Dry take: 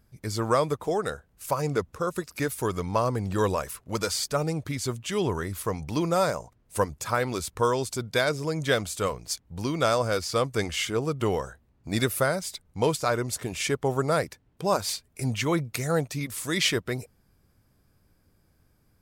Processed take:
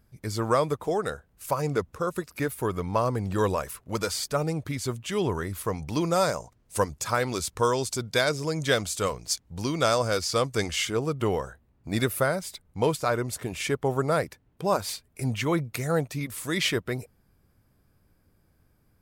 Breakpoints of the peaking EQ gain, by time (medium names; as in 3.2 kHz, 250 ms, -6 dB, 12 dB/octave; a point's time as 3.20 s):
peaking EQ 6 kHz 1.5 oct
2.02 s -2 dB
2.71 s -10 dB
3.04 s -2.5 dB
5.64 s -2.5 dB
6.21 s +4 dB
10.68 s +4 dB
11.28 s -4.5 dB